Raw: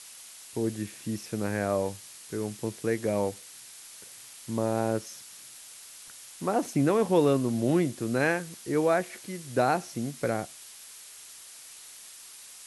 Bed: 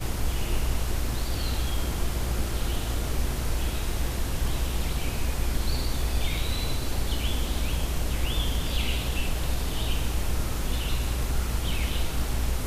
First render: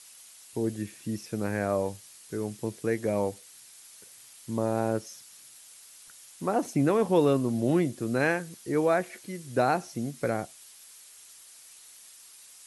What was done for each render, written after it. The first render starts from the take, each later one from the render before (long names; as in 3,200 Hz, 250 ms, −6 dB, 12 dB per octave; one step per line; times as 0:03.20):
broadband denoise 6 dB, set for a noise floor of −48 dBFS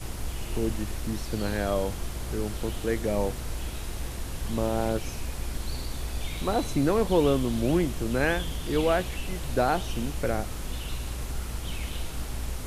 mix in bed −6 dB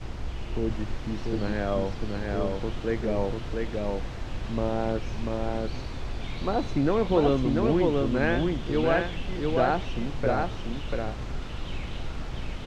high-frequency loss of the air 170 metres
single-tap delay 691 ms −3 dB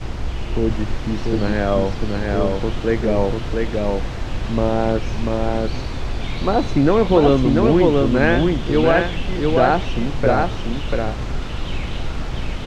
level +9 dB
brickwall limiter −3 dBFS, peak gain reduction 3 dB